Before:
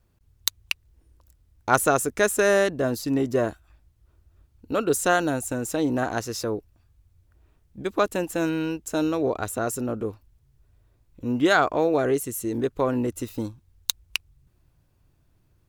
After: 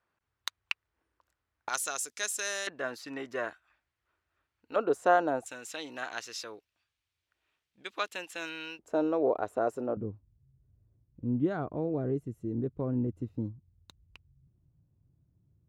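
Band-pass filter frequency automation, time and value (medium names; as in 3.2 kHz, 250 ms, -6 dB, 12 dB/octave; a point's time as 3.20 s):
band-pass filter, Q 1.2
1.4 kHz
from 1.69 s 5.2 kHz
from 2.67 s 1.8 kHz
from 4.76 s 730 Hz
from 5.46 s 2.9 kHz
from 8.79 s 610 Hz
from 9.97 s 140 Hz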